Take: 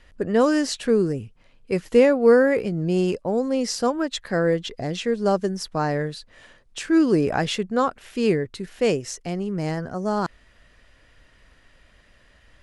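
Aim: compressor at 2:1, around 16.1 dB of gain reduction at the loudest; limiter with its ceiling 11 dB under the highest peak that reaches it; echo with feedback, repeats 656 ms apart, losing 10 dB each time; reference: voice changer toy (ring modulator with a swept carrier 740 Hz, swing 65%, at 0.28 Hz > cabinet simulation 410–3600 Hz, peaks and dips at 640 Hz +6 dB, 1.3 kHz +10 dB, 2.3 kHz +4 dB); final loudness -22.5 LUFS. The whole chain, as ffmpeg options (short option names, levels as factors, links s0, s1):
-af "acompressor=threshold=0.00891:ratio=2,alimiter=level_in=2.37:limit=0.0631:level=0:latency=1,volume=0.422,aecho=1:1:656|1312|1968|2624:0.316|0.101|0.0324|0.0104,aeval=exprs='val(0)*sin(2*PI*740*n/s+740*0.65/0.28*sin(2*PI*0.28*n/s))':c=same,highpass=410,equalizer=f=640:t=q:w=4:g=6,equalizer=f=1300:t=q:w=4:g=10,equalizer=f=2300:t=q:w=4:g=4,lowpass=f=3600:w=0.5412,lowpass=f=3600:w=1.3066,volume=7.08"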